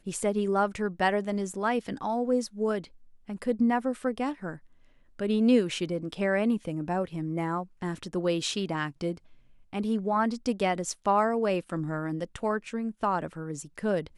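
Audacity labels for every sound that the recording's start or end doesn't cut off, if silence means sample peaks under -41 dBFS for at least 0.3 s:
3.290000	4.570000	sound
5.190000	9.170000	sound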